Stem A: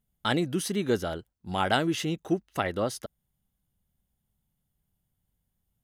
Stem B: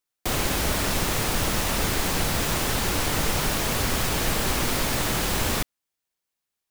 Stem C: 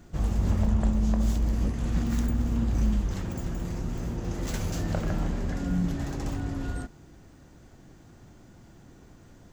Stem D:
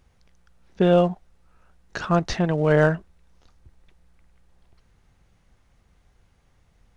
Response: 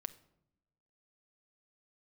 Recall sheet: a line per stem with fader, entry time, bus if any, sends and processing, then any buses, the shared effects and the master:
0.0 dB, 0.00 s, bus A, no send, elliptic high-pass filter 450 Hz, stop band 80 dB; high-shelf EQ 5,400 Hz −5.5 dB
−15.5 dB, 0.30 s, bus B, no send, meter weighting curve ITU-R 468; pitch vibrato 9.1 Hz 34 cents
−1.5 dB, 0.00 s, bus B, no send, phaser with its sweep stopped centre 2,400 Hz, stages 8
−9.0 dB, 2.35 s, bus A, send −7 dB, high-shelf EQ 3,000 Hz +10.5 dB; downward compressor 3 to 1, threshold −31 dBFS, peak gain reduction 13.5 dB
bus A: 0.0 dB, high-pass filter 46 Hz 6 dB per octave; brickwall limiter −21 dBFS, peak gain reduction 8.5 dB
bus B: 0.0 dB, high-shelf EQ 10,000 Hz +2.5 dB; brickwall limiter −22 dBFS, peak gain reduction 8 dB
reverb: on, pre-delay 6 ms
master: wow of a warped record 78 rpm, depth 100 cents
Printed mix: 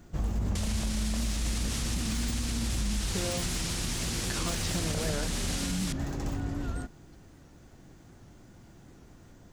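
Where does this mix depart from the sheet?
stem A: muted
stem C: missing phaser with its sweep stopped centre 2,400 Hz, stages 8

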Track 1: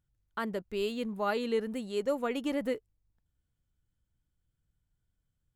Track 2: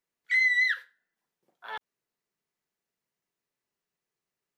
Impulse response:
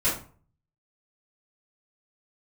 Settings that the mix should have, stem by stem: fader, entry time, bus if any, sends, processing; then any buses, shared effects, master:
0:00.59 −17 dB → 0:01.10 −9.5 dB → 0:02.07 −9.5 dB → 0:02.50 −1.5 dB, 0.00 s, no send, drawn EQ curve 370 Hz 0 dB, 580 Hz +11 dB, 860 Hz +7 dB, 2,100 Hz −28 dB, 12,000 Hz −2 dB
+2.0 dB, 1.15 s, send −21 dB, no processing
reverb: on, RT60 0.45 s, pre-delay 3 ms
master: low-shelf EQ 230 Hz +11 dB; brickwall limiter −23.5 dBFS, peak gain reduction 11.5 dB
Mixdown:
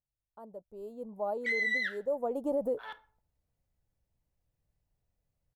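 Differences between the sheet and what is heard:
stem 2 +2.0 dB → −7.0 dB
master: missing low-shelf EQ 230 Hz +11 dB

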